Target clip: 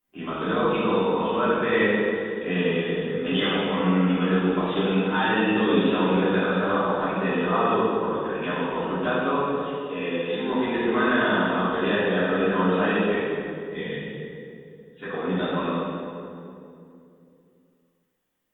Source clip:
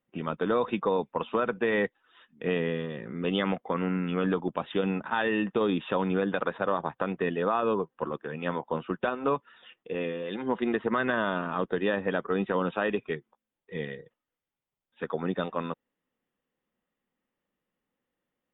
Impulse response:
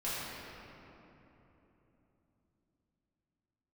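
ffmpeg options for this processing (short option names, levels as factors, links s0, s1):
-filter_complex "[0:a]crystalizer=i=3:c=0[s0];[1:a]atrim=start_sample=2205,asetrate=66150,aresample=44100[s1];[s0][s1]afir=irnorm=-1:irlink=0,volume=1.19"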